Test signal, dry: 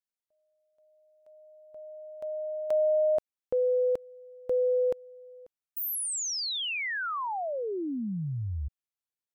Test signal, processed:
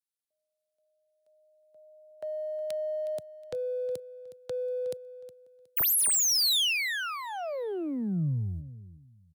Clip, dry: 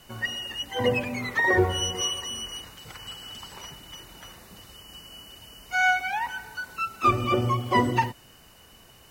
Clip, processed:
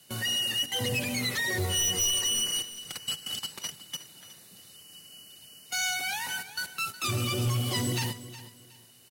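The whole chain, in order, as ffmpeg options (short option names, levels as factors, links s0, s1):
-filter_complex "[0:a]highpass=f=100:w=0.5412,highpass=f=100:w=1.3066,agate=range=0.224:threshold=0.00891:ratio=16:release=45:detection=rms,highshelf=f=4800:g=7.5,acrossover=split=130|3400[s0][s1][s2];[s1]acompressor=threshold=0.02:ratio=6:attack=0.52:release=24:knee=2.83:detection=peak[s3];[s0][s3][s2]amix=inputs=3:normalize=0,equalizer=f=160:t=o:w=0.67:g=3,equalizer=f=1000:t=o:w=0.67:g=-6,equalizer=f=4000:t=o:w=0.67:g=7,equalizer=f=10000:t=o:w=0.67:g=7,volume=22.4,asoftclip=hard,volume=0.0447,asplit=2[s4][s5];[s5]aecho=0:1:365|730|1095:0.178|0.0445|0.0111[s6];[s4][s6]amix=inputs=2:normalize=0,volume=1.41"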